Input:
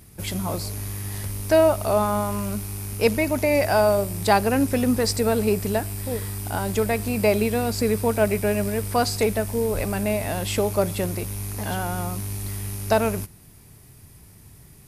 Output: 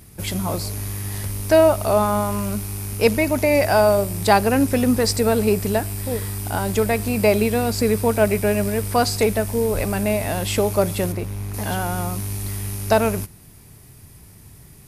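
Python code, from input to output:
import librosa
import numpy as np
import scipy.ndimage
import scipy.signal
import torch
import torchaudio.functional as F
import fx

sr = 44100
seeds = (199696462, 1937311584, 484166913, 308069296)

y = fx.high_shelf(x, sr, hz=3600.0, db=-11.5, at=(11.12, 11.54))
y = y * 10.0 ** (3.0 / 20.0)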